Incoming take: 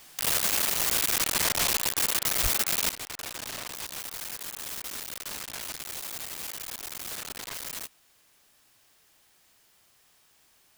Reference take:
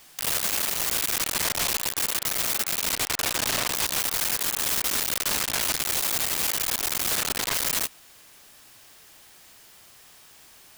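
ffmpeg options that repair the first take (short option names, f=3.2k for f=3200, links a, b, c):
-filter_complex "[0:a]adeclick=t=4,asplit=3[a][b][c];[a]afade=t=out:st=2.42:d=0.02[d];[b]highpass=f=140:w=0.5412,highpass=f=140:w=1.3066,afade=t=in:st=2.42:d=0.02,afade=t=out:st=2.54:d=0.02[e];[c]afade=t=in:st=2.54:d=0.02[f];[d][e][f]amix=inputs=3:normalize=0,asetnsamples=n=441:p=0,asendcmd='2.9 volume volume 11.5dB',volume=0dB"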